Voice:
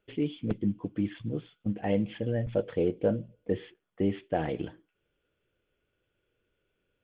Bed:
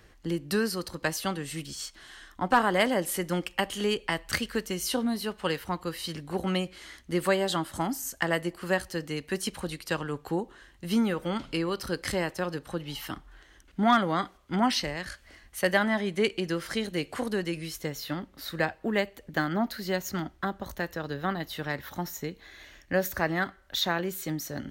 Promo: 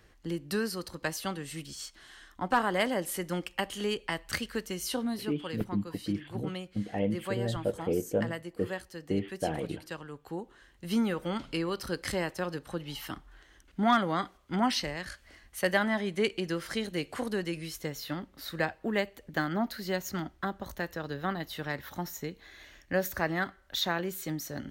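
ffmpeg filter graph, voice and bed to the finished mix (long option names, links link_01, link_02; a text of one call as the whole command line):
ffmpeg -i stem1.wav -i stem2.wav -filter_complex "[0:a]adelay=5100,volume=-2.5dB[link_01];[1:a]volume=4dB,afade=type=out:start_time=5.14:duration=0.23:silence=0.473151,afade=type=in:start_time=10.18:duration=0.83:silence=0.398107[link_02];[link_01][link_02]amix=inputs=2:normalize=0" out.wav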